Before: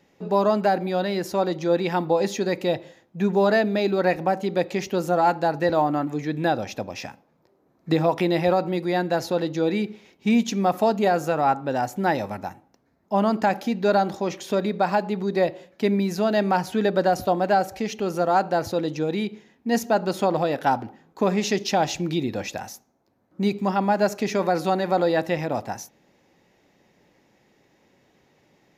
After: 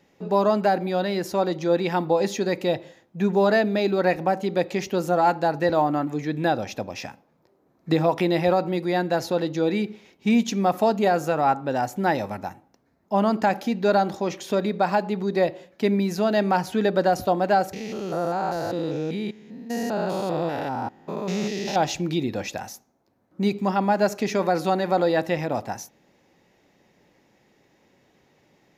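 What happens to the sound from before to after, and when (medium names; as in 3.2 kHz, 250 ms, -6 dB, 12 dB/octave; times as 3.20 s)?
17.73–21.76 s: spectrogram pixelated in time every 200 ms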